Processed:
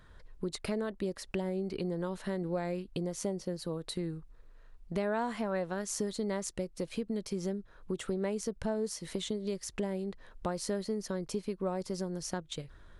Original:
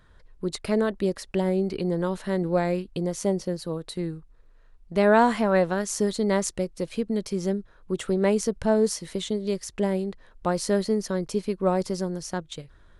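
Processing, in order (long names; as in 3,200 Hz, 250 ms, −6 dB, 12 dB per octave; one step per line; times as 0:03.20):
downward compressor 3 to 1, threshold −34 dBFS, peak gain reduction 15 dB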